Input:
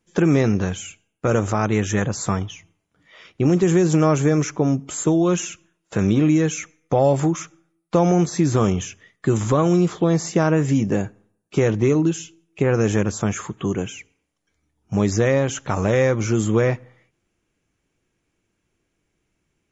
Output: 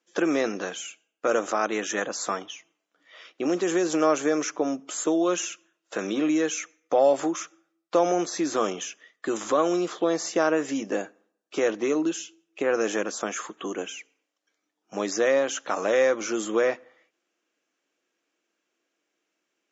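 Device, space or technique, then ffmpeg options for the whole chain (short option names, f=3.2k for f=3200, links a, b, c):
phone speaker on a table: -af "highpass=f=330:w=0.5412,highpass=f=330:w=1.3066,equalizer=f=400:t=q:w=4:g=-7,equalizer=f=900:t=q:w=4:g=-5,equalizer=f=2.2k:t=q:w=4:g=-4,lowpass=f=6.9k:w=0.5412,lowpass=f=6.9k:w=1.3066"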